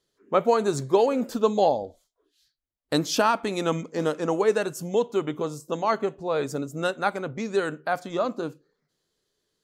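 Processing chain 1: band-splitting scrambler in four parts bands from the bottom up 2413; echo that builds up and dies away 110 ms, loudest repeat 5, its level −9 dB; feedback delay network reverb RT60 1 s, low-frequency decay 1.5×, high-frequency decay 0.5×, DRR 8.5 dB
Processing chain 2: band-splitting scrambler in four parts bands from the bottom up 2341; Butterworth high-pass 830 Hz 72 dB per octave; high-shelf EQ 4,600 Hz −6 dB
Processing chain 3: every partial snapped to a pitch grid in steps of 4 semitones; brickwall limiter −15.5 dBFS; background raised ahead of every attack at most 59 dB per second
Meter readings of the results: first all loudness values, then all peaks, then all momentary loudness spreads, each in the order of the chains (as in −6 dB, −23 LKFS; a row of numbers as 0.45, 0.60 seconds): −19.5, −25.5, −25.5 LKFS; −6.5, −10.5, −14.0 dBFS; 7, 9, 5 LU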